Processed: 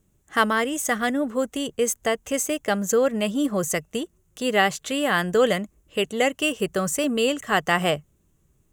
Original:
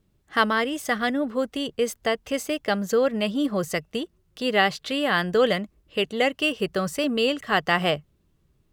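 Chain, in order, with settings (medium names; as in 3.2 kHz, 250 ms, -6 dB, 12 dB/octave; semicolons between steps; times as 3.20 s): resonant high shelf 5.7 kHz +6 dB, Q 3; trim +1 dB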